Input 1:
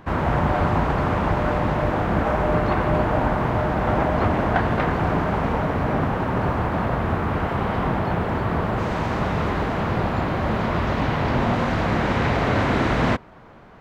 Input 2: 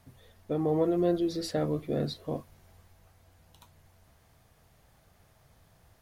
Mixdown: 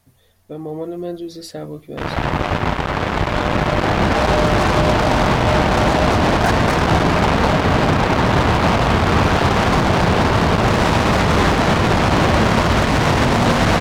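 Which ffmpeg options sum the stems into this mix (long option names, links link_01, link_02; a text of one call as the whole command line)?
ffmpeg -i stem1.wav -i stem2.wav -filter_complex "[0:a]dynaudnorm=framelen=340:gausssize=11:maxgain=11.5dB,acrusher=bits=2:mix=0:aa=0.5,adelay=1900,volume=1dB[link_01];[1:a]highshelf=frequency=4100:gain=6.5,volume=-0.5dB[link_02];[link_01][link_02]amix=inputs=2:normalize=0,alimiter=limit=-7dB:level=0:latency=1:release=22" out.wav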